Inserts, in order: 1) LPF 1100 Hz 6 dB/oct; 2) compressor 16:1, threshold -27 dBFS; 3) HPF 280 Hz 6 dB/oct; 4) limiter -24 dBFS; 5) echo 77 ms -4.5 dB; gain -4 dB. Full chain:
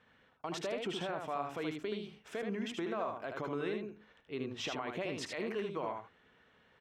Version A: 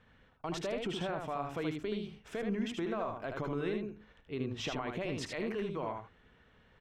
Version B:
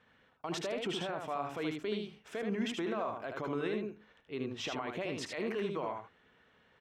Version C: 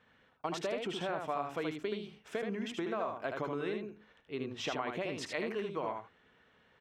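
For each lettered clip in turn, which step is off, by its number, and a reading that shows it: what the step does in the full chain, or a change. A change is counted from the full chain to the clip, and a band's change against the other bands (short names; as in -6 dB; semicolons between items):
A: 3, crest factor change -1.5 dB; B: 2, mean gain reduction 3.5 dB; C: 4, loudness change +1.5 LU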